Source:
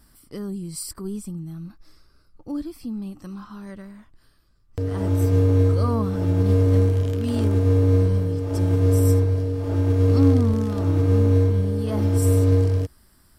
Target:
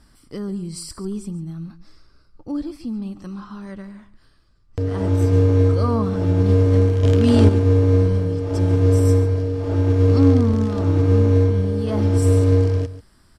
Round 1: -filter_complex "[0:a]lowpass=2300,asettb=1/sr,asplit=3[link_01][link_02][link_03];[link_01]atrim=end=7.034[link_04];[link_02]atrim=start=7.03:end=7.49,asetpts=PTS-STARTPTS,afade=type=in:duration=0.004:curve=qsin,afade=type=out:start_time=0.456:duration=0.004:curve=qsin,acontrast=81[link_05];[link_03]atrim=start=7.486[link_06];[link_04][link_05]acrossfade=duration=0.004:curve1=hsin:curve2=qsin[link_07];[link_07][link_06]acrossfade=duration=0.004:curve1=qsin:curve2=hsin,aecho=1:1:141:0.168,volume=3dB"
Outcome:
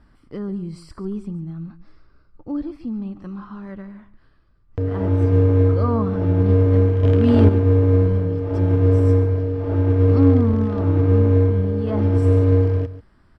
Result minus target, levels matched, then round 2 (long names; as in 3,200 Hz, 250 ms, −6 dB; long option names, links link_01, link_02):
8,000 Hz band −18.5 dB
-filter_complex "[0:a]lowpass=7200,asettb=1/sr,asplit=3[link_01][link_02][link_03];[link_01]atrim=end=7.034[link_04];[link_02]atrim=start=7.03:end=7.49,asetpts=PTS-STARTPTS,afade=type=in:duration=0.004:curve=qsin,afade=type=out:start_time=0.456:duration=0.004:curve=qsin,acontrast=81[link_05];[link_03]atrim=start=7.486[link_06];[link_04][link_05]acrossfade=duration=0.004:curve1=hsin:curve2=qsin[link_07];[link_07][link_06]acrossfade=duration=0.004:curve1=qsin:curve2=hsin,aecho=1:1:141:0.168,volume=3dB"